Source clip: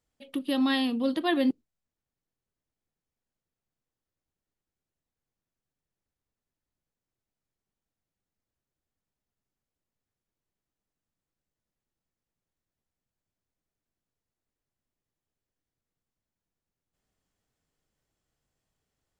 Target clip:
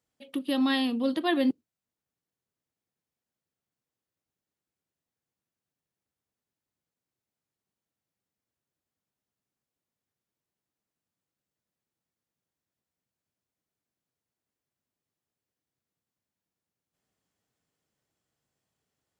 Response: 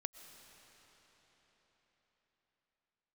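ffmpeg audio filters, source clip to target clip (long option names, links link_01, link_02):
-af "highpass=100"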